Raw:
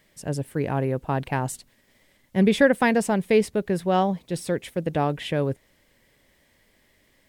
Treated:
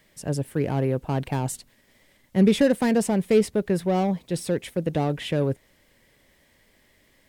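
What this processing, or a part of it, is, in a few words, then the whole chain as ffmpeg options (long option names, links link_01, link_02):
one-band saturation: -filter_complex "[0:a]acrossover=split=550|4000[link_01][link_02][link_03];[link_02]asoftclip=type=tanh:threshold=-31dB[link_04];[link_01][link_04][link_03]amix=inputs=3:normalize=0,volume=1.5dB"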